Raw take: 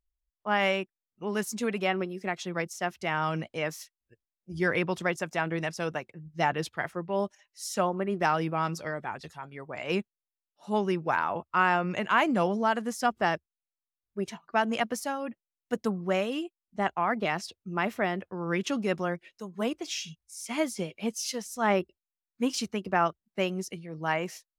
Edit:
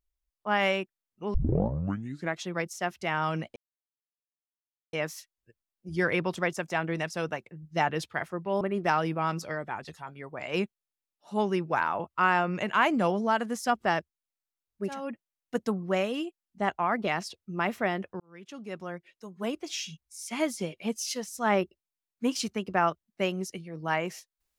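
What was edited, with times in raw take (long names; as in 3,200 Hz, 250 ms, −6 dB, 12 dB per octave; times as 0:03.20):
0:01.34: tape start 1.06 s
0:03.56: splice in silence 1.37 s
0:07.24–0:07.97: remove
0:14.31–0:15.13: remove, crossfade 0.24 s
0:18.38–0:20.03: fade in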